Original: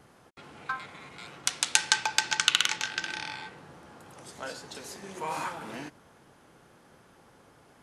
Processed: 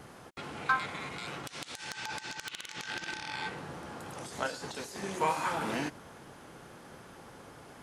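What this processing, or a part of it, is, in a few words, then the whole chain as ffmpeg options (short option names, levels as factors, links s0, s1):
de-esser from a sidechain: -filter_complex "[0:a]asplit=2[s0][s1];[s1]highpass=f=4600:w=0.5412,highpass=f=4600:w=1.3066,apad=whole_len=344863[s2];[s0][s2]sidechaincompress=threshold=0.00282:ratio=16:attack=1.8:release=39,volume=2.24"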